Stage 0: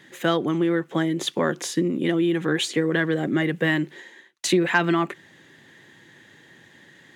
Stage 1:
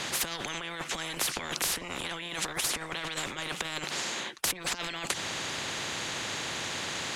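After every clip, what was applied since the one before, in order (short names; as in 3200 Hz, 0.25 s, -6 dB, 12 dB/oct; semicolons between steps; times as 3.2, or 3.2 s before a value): LPF 8900 Hz 12 dB/oct; negative-ratio compressor -27 dBFS, ratio -0.5; spectral compressor 10:1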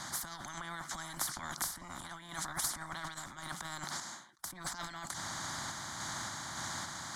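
fixed phaser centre 1100 Hz, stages 4; random-step tremolo; ending taper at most 110 dB/s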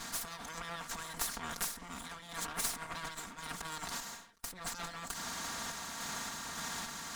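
minimum comb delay 4.3 ms; gain +1.5 dB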